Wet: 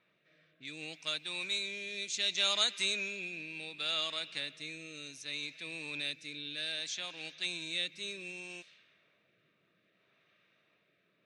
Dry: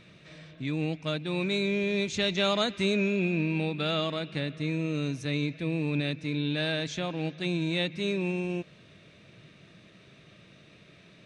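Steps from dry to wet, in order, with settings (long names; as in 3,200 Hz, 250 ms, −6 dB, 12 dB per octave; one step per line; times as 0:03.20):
rotating-speaker cabinet horn 0.65 Hz
low-pass that shuts in the quiet parts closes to 1,100 Hz, open at −29.5 dBFS
first difference
level +8.5 dB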